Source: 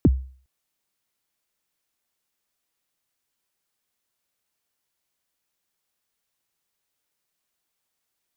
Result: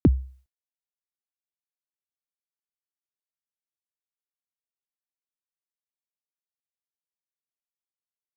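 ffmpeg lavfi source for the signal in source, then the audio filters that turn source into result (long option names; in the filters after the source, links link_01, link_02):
-f lavfi -i "aevalsrc='0.355*pow(10,-3*t/0.44)*sin(2*PI*(380*0.035/log(65/380)*(exp(log(65/380)*min(t,0.035)/0.035)-1)+65*max(t-0.035,0)))':duration=0.41:sample_rate=44100"
-af "agate=range=-33dB:threshold=-47dB:ratio=3:detection=peak"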